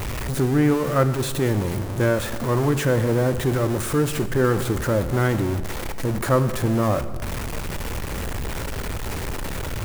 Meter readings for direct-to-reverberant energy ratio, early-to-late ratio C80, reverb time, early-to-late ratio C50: 11.0 dB, 14.0 dB, 1.7 s, 13.0 dB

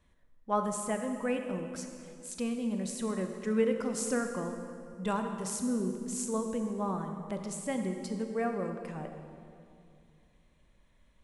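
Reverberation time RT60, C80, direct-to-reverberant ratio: 2.4 s, 6.5 dB, 5.0 dB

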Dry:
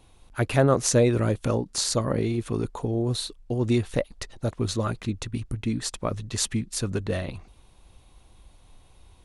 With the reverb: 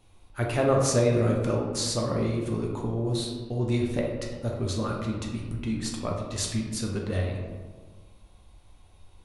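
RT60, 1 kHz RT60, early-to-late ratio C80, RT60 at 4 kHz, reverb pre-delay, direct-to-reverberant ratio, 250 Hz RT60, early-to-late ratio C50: 1.4 s, 1.3 s, 5.5 dB, 0.75 s, 5 ms, -1.0 dB, 1.7 s, 3.0 dB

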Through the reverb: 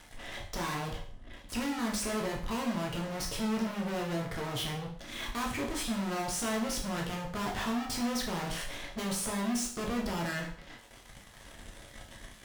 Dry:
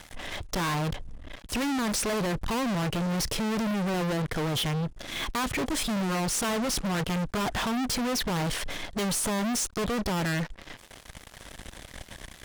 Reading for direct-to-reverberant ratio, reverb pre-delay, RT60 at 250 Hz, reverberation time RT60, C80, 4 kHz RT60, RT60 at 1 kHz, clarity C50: -1.5 dB, 9 ms, 0.50 s, 0.50 s, 11.0 dB, 0.50 s, 0.50 s, 6.5 dB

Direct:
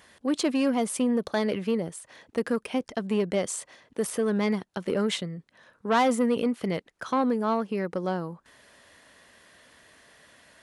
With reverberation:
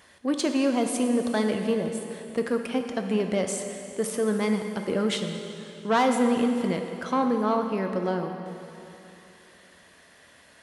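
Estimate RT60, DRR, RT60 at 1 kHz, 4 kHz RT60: 3.0 s, 4.5 dB, 3.0 s, 2.8 s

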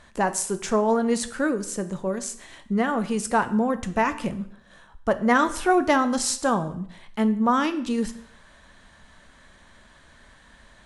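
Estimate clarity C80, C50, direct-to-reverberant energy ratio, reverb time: 17.5 dB, 14.5 dB, 10.0 dB, 0.65 s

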